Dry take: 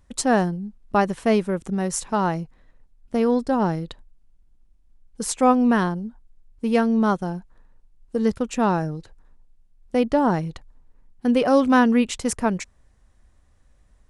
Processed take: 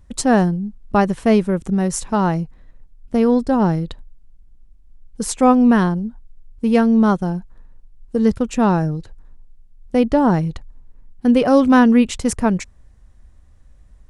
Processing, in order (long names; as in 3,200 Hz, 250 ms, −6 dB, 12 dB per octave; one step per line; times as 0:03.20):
low-shelf EQ 220 Hz +8.5 dB
level +2 dB